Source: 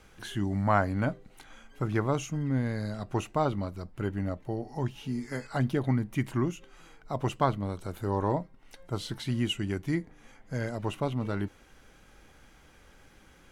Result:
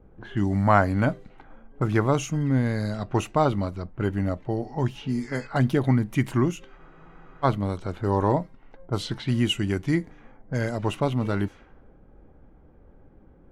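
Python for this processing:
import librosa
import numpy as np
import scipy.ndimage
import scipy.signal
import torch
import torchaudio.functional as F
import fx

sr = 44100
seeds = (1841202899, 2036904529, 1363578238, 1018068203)

y = fx.env_lowpass(x, sr, base_hz=460.0, full_db=-28.5)
y = fx.spec_freeze(y, sr, seeds[0], at_s=6.8, hold_s=0.64)
y = F.gain(torch.from_numpy(y), 6.0).numpy()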